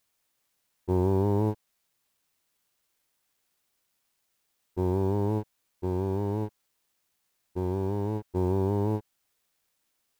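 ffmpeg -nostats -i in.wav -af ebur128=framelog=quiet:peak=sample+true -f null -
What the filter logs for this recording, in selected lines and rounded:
Integrated loudness:
  I:         -29.1 LUFS
  Threshold: -39.7 LUFS
Loudness range:
  LRA:         5.4 LU
  Threshold: -52.8 LUFS
  LRA low:   -36.7 LUFS
  LRA high:  -31.3 LUFS
Sample peak:
  Peak:      -14.9 dBFS
True peak:
  Peak:      -14.9 dBFS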